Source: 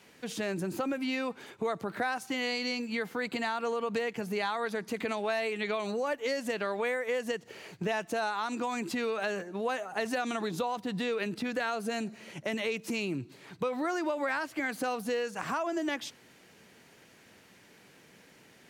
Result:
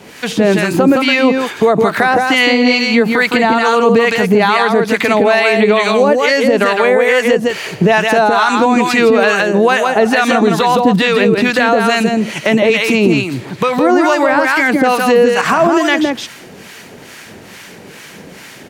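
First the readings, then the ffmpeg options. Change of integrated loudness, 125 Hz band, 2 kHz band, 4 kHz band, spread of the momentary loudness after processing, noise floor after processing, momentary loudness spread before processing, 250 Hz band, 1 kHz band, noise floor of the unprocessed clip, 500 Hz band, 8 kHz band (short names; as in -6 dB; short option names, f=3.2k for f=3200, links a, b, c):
+21.5 dB, +22.5 dB, +21.5 dB, +20.5 dB, 4 LU, -36 dBFS, 4 LU, +22.0 dB, +21.5 dB, -59 dBFS, +21.5 dB, +18.0 dB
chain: -filter_complex "[0:a]asplit=2[a][b];[b]aecho=0:1:163:0.596[c];[a][c]amix=inputs=2:normalize=0,acrossover=split=4000[d][e];[e]acompressor=threshold=-50dB:ratio=4:attack=1:release=60[f];[d][f]amix=inputs=2:normalize=0,acrossover=split=850[g][h];[g]aeval=exprs='val(0)*(1-0.7/2+0.7/2*cos(2*PI*2.3*n/s))':c=same[i];[h]aeval=exprs='val(0)*(1-0.7/2-0.7/2*cos(2*PI*2.3*n/s))':c=same[j];[i][j]amix=inputs=2:normalize=0,alimiter=level_in=26dB:limit=-1dB:release=50:level=0:latency=1,volume=-1dB"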